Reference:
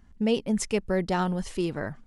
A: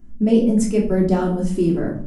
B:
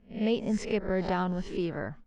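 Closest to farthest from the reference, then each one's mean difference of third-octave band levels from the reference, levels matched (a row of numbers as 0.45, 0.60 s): B, A; 4.0, 7.0 dB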